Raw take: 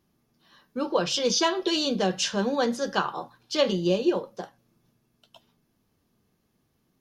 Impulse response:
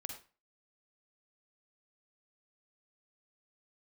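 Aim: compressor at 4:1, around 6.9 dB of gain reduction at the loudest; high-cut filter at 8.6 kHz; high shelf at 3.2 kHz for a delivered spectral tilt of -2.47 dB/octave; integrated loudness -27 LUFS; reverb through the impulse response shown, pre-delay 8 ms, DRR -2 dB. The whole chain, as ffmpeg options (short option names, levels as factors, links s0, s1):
-filter_complex "[0:a]lowpass=8600,highshelf=f=3200:g=5.5,acompressor=threshold=0.0562:ratio=4,asplit=2[s0][s1];[1:a]atrim=start_sample=2205,adelay=8[s2];[s1][s2]afir=irnorm=-1:irlink=0,volume=1.68[s3];[s0][s3]amix=inputs=2:normalize=0,volume=0.794"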